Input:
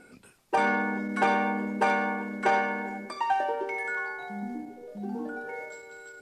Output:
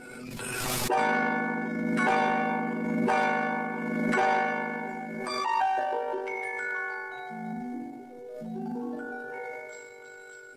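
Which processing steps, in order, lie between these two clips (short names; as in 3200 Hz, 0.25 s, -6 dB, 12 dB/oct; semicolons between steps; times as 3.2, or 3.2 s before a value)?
granular stretch 1.7×, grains 39 ms; transient shaper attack -3 dB, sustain +2 dB; in parallel at -10 dB: overloaded stage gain 22.5 dB; on the sum: backwards sustainer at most 24 dB/s; gain -2 dB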